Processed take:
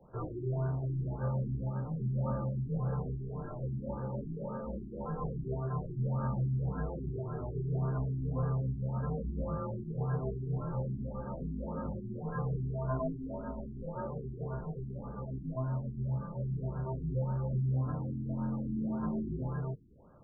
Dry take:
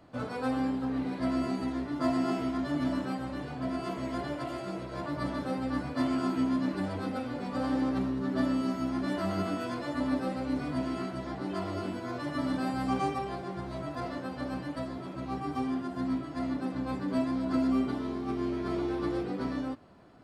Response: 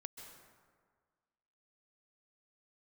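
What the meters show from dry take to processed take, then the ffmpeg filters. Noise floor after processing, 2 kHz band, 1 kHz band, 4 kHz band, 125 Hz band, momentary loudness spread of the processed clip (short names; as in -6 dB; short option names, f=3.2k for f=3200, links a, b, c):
-44 dBFS, -14.0 dB, -8.0 dB, under -40 dB, +8.0 dB, 7 LU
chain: -af "asoftclip=type=tanh:threshold=-24dB,highpass=f=150:t=q:w=0.5412,highpass=f=150:t=q:w=1.307,lowpass=f=3.4k:t=q:w=0.5176,lowpass=f=3.4k:t=q:w=0.7071,lowpass=f=3.4k:t=q:w=1.932,afreqshift=-130,afftfilt=real='re*lt(b*sr/1024,380*pow(1700/380,0.5+0.5*sin(2*PI*1.8*pts/sr)))':imag='im*lt(b*sr/1024,380*pow(1700/380,0.5+0.5*sin(2*PI*1.8*pts/sr)))':win_size=1024:overlap=0.75,volume=-1dB"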